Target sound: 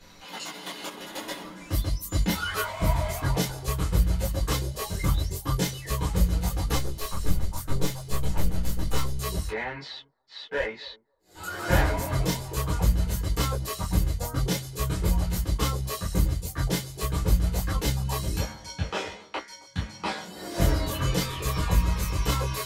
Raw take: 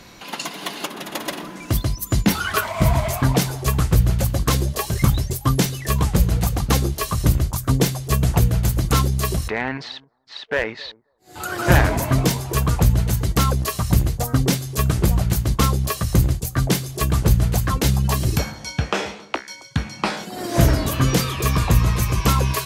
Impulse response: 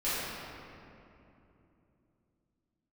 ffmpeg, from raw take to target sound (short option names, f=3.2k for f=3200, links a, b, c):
-filter_complex "[0:a]asettb=1/sr,asplit=3[a][b][c];[a]atrim=end=6.754[d];[b]atrim=start=6.75:end=9.18,asetpts=PTS-STARTPTS,afade=t=in:d=0.004:c=qsin,afade=t=out:st=2.426:d=0.004:c=qsin,aeval=exprs='clip(val(0),-1,0.0447)':c=same[e];[c]atrim=start=9.176[f];[d][e]acrossfade=d=0.004:c1=hsin:c2=qsin[g];[g][f]acrossfade=d=0.004:c1=qsin:c2=hsin[h];[1:a]atrim=start_sample=2205,atrim=end_sample=3528,asetrate=74970,aresample=44100[i];[h][i]afir=irnorm=-1:irlink=0,volume=-7.5dB"